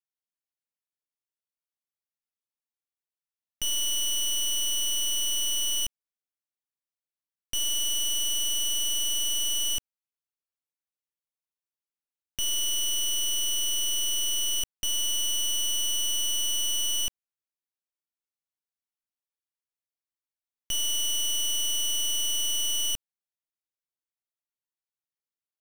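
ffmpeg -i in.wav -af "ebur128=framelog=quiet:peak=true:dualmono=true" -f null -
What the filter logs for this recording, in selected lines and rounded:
Integrated loudness:
  I:         -22.7 LUFS
  Threshold: -32.7 LUFS
Loudness range:
  LRA:         7.6 LU
  Threshold: -44.9 LUFS
  LRA low:   -30.0 LUFS
  LRA high:  -22.4 LUFS
True peak:
  Peak:      -23.9 dBFS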